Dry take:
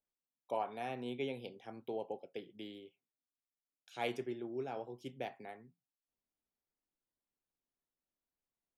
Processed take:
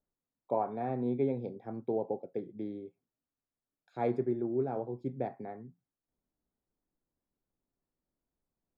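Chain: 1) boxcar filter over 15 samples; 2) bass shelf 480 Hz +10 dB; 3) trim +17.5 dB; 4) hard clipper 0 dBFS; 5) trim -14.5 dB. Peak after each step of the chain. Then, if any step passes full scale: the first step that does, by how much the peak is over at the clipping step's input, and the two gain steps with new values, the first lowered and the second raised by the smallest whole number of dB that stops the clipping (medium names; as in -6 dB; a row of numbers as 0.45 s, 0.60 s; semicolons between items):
-24.5 dBFS, -20.5 dBFS, -3.0 dBFS, -3.0 dBFS, -17.5 dBFS; nothing clips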